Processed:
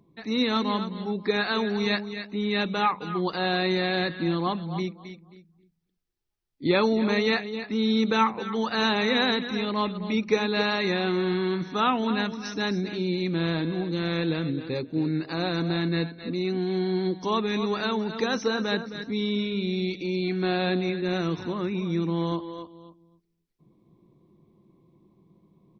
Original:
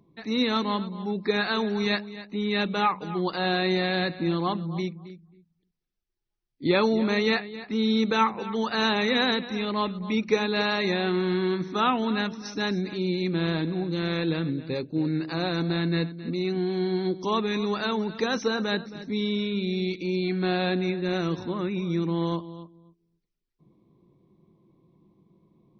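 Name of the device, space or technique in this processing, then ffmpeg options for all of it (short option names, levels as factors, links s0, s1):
ducked delay: -filter_complex "[0:a]asplit=3[s0][s1][s2];[s1]adelay=264,volume=0.596[s3];[s2]apad=whole_len=1149357[s4];[s3][s4]sidechaincompress=threshold=0.0224:ratio=4:attack=16:release=706[s5];[s0][s5]amix=inputs=2:normalize=0"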